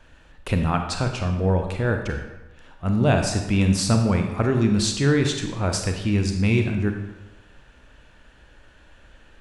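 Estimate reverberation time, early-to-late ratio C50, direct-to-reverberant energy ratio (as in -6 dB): 1.1 s, 6.0 dB, 4.0 dB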